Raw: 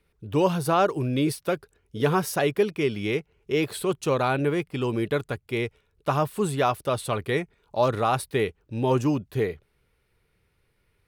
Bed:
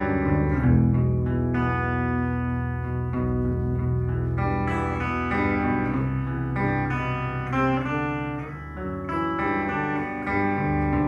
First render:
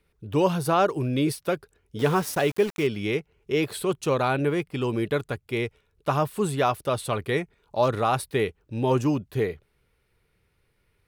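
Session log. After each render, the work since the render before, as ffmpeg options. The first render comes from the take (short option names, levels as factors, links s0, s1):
-filter_complex "[0:a]asettb=1/sr,asplit=3[s0][s1][s2];[s0]atrim=end=1.994[s3];[s1]atrim=start=1.99:end=2.87,asetpts=PTS-STARTPTS,afade=t=in:d=0.004:c=qsin,afade=t=out:st=0.876:d=0.004:c=qsin,aeval=exprs='val(0)*gte(abs(val(0)),0.02)':c=same[s4];[s2]atrim=start=2.866[s5];[s3][s4]acrossfade=d=0.004:c1=hsin:c2=qsin[s6];[s6][s5]acrossfade=d=0.004:c1=qsin:c2=hsin"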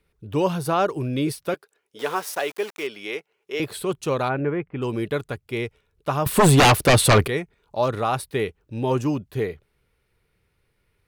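-filter_complex "[0:a]asettb=1/sr,asplit=3[s0][s1][s2];[s0]atrim=end=1.544[s3];[s1]atrim=start=1.54:end=3.6,asetpts=PTS-STARTPTS,afade=t=in:d=0.004:c=qsin,afade=t=out:st=2.056:d=0.004:c=qsin,highpass=500[s4];[s2]atrim=start=3.596[s5];[s3][s4]acrossfade=d=0.004:c1=hsin:c2=qsin[s6];[s6][s5]acrossfade=d=0.004:c1=qsin:c2=hsin,asplit=3[s7][s8][s9];[s7]afade=t=out:st=4.28:d=0.02[s10];[s8]lowpass=f=2200:w=0.5412,lowpass=f=2200:w=1.3066,afade=t=in:st=4.28:d=0.02,afade=t=out:st=4.81:d=0.02[s11];[s9]afade=t=in:st=4.81:d=0.02[s12];[s10][s11][s12]amix=inputs=3:normalize=0,asettb=1/sr,asplit=3[s13][s14][s15];[s13]atrim=end=6.264[s16];[s14]atrim=start=6.26:end=7.28,asetpts=PTS-STARTPTS,afade=t=in:d=0.004:c=qsin,afade=t=out:st=1.016:d=0.004:c=qsin,aeval=exprs='0.316*sin(PI/2*4.47*val(0)/0.316)':c=same[s17];[s15]atrim=start=7.276[s18];[s16][s17]acrossfade=d=0.004:c1=hsin:c2=qsin[s19];[s19][s18]acrossfade=d=0.004:c1=qsin:c2=hsin"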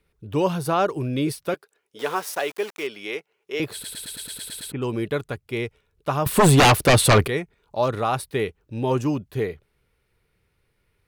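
-filter_complex "[0:a]asplit=10[s0][s1][s2][s3][s4][s5][s6][s7][s8][s9];[s0]atrim=end=3.842[s10];[s1]atrim=start=3.728:end=3.842[s11];[s2]atrim=start=3.728:end=3.842[s12];[s3]atrim=start=3.728:end=3.842[s13];[s4]atrim=start=3.728:end=3.842[s14];[s5]atrim=start=3.728:end=3.842[s15];[s6]atrim=start=3.728:end=3.842[s16];[s7]atrim=start=3.728:end=3.842[s17];[s8]atrim=start=3.728:end=3.842[s18];[s9]atrim=start=4.718[s19];[s10][s11]acrossfade=d=0.004:c1=hsin:c2=hsin[s20];[s20][s12]acrossfade=d=0.004:c1=hsin:c2=hsin[s21];[s21][s13]acrossfade=d=0.004:c1=hsin:c2=hsin[s22];[s22][s14]acrossfade=d=0.004:c1=hsin:c2=hsin[s23];[s23][s15]acrossfade=d=0.004:c1=hsin:c2=hsin[s24];[s24][s16]acrossfade=d=0.004:c1=hsin:c2=hsin[s25];[s25][s17]acrossfade=d=0.004:c1=hsin:c2=hsin[s26];[s26][s18]acrossfade=d=0.004:c1=hsin:c2=hsin[s27];[s27][s19]acrossfade=d=0.004:c1=hsin:c2=hsin"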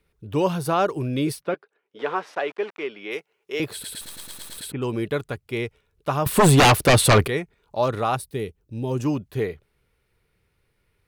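-filter_complex "[0:a]asplit=3[s0][s1][s2];[s0]afade=t=out:st=1.41:d=0.02[s3];[s1]highpass=150,lowpass=2600,afade=t=in:st=1.41:d=0.02,afade=t=out:st=3.1:d=0.02[s4];[s2]afade=t=in:st=3.1:d=0.02[s5];[s3][s4][s5]amix=inputs=3:normalize=0,asettb=1/sr,asplit=3[s6][s7][s8];[s6]atrim=end=4.014[s9];[s7]atrim=start=4.01:end=4.58,asetpts=PTS-STARTPTS,afade=t=in:d=0.004:c=qsin,afade=t=out:st=0.566:d=0.004:c=qsin,acrusher=bits=5:dc=4:mix=0:aa=0.000001[s10];[s8]atrim=start=4.576[s11];[s9][s10]acrossfade=d=0.004:c1=hsin:c2=qsin[s12];[s12][s11]acrossfade=d=0.004:c1=qsin:c2=hsin,asettb=1/sr,asplit=3[s13][s14][s15];[s13]atrim=end=8.164[s16];[s14]atrim=start=8.16:end=9,asetpts=PTS-STARTPTS,afade=t=in:d=0.004:c=qsin,afade=t=out:st=0.836:d=0.004:c=qsin,equalizer=f=1400:w=0.39:g=-11[s17];[s15]atrim=start=8.996[s18];[s16][s17]acrossfade=d=0.004:c1=hsin:c2=qsin[s19];[s19][s18]acrossfade=d=0.004:c1=qsin:c2=hsin"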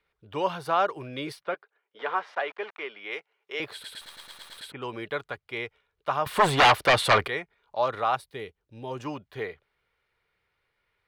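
-filter_complex "[0:a]acrossover=split=570 4300:gain=0.178 1 0.158[s0][s1][s2];[s0][s1][s2]amix=inputs=3:normalize=0,bandreject=f=2600:w=16"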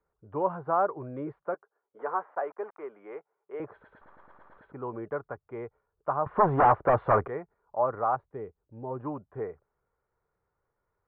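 -af "lowpass=f=1300:w=0.5412,lowpass=f=1300:w=1.3066,aemphasis=mode=reproduction:type=75kf"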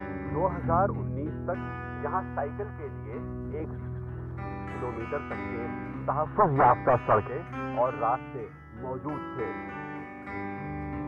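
-filter_complex "[1:a]volume=0.251[s0];[0:a][s0]amix=inputs=2:normalize=0"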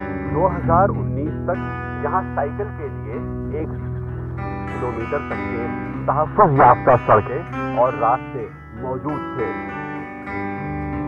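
-af "volume=2.99,alimiter=limit=0.891:level=0:latency=1"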